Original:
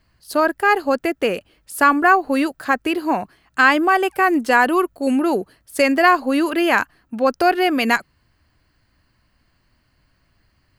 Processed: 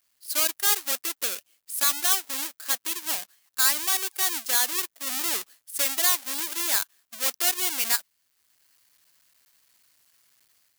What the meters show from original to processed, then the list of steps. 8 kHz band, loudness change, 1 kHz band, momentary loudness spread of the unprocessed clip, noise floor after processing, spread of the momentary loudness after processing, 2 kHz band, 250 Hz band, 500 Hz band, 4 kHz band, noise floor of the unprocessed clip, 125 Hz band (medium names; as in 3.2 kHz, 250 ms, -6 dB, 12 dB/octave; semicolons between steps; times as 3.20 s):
+13.0 dB, -6.0 dB, -18.0 dB, 9 LU, -73 dBFS, 9 LU, -14.0 dB, -26.0 dB, -22.0 dB, +2.0 dB, -64 dBFS, no reading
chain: square wave that keeps the level; differentiator; level rider gain up to 7 dB; trim -1 dB